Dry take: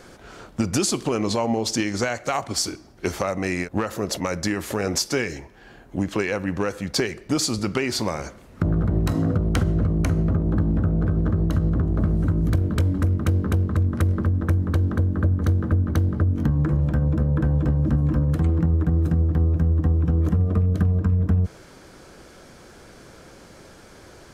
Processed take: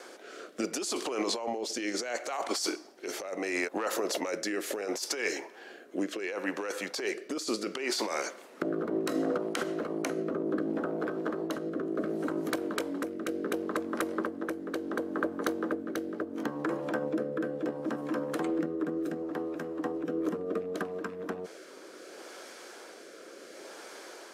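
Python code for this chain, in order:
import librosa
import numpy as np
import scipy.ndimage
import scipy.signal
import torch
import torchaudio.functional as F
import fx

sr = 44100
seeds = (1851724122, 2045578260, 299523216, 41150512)

y = scipy.signal.sosfilt(scipy.signal.butter(4, 340.0, 'highpass', fs=sr, output='sos'), x)
y = fx.over_compress(y, sr, threshold_db=-30.0, ratio=-1.0)
y = fx.rotary(y, sr, hz=0.7)
y = F.gain(torch.from_numpy(y), 1.5).numpy()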